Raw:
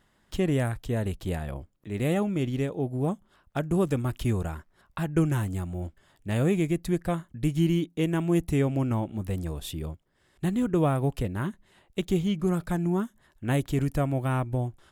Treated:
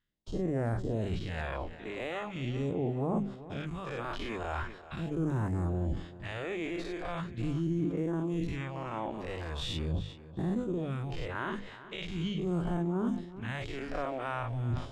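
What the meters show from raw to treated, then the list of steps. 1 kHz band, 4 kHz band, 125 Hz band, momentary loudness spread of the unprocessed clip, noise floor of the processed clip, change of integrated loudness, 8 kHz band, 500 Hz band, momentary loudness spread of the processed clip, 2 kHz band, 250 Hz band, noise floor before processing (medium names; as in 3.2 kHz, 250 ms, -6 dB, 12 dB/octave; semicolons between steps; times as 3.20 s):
-3.0 dB, -1.0 dB, -7.0 dB, 12 LU, -49 dBFS, -6.5 dB, -12.5 dB, -6.0 dB, 7 LU, -1.5 dB, -7.0 dB, -67 dBFS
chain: every event in the spectrogram widened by 120 ms; gate -52 dBFS, range -26 dB; bass shelf 500 Hz -3 dB; hum notches 50/100/150/200/250 Hz; reverse; compression 12:1, threshold -37 dBFS, peak gain reduction 19.5 dB; reverse; phase shifter stages 2, 0.41 Hz, lowest notch 120–3100 Hz; distance through air 150 m; tape echo 387 ms, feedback 41%, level -14 dB, low-pass 5.8 kHz; decay stretcher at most 110 dB/s; trim +8.5 dB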